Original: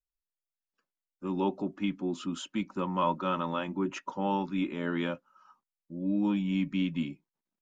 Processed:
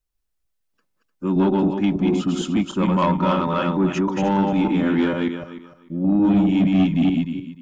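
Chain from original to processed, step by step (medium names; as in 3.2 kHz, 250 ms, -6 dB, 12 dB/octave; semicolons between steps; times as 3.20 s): backward echo that repeats 151 ms, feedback 42%, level -2.5 dB; bass shelf 350 Hz +8 dB; saturation -18.5 dBFS, distortion -15 dB; trim +7.5 dB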